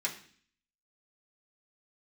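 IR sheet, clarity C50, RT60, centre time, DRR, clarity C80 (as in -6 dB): 11.0 dB, 0.50 s, 15 ms, -4.5 dB, 14.5 dB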